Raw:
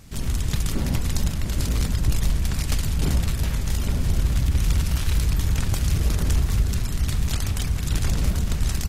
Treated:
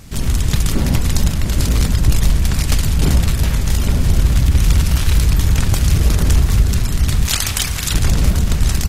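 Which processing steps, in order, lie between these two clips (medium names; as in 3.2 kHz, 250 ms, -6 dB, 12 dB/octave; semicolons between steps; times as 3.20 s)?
7.25–7.94 s: tilt shelf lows -7 dB, about 720 Hz; trim +8 dB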